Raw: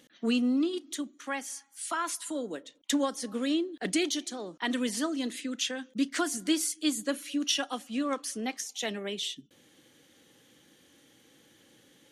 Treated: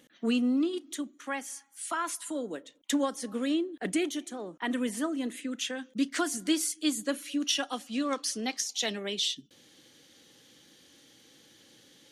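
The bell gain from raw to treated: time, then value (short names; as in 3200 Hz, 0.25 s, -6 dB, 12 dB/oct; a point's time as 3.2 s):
bell 4700 Hz 0.98 oct
3.4 s -4 dB
4.05 s -12.5 dB
5.23 s -12.5 dB
5.92 s -0.5 dB
7.54 s -0.5 dB
8.17 s +8.5 dB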